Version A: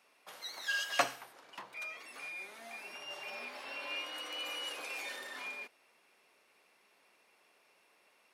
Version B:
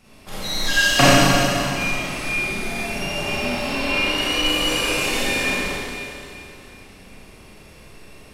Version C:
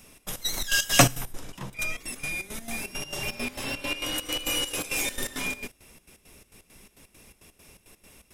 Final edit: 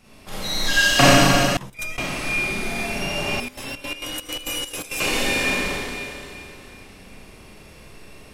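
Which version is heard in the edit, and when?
B
0:01.57–0:01.98: punch in from C
0:03.40–0:05.00: punch in from C
not used: A

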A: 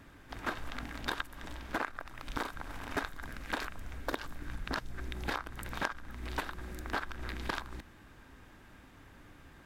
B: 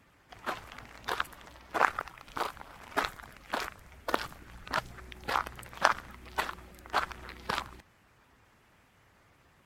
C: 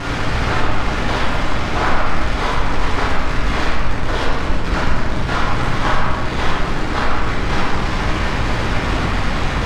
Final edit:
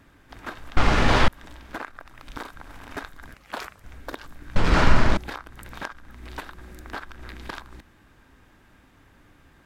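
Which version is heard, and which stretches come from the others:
A
0:00.77–0:01.28: punch in from C
0:03.34–0:03.84: punch in from B
0:04.56–0:05.17: punch in from C

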